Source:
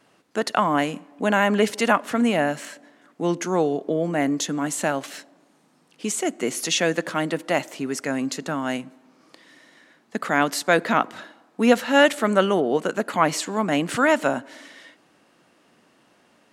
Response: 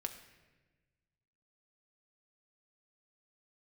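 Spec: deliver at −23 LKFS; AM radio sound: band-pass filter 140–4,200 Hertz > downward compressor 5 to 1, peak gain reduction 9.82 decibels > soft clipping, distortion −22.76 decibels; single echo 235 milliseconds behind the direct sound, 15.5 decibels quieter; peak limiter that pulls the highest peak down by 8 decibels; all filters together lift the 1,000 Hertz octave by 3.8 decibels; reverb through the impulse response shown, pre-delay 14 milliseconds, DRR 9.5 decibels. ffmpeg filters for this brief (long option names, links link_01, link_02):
-filter_complex "[0:a]equalizer=frequency=1000:width_type=o:gain=5,alimiter=limit=-9dB:level=0:latency=1,aecho=1:1:235:0.168,asplit=2[link_01][link_02];[1:a]atrim=start_sample=2205,adelay=14[link_03];[link_02][link_03]afir=irnorm=-1:irlink=0,volume=-8.5dB[link_04];[link_01][link_04]amix=inputs=2:normalize=0,highpass=140,lowpass=4200,acompressor=threshold=-24dB:ratio=5,asoftclip=threshold=-16dB,volume=7dB"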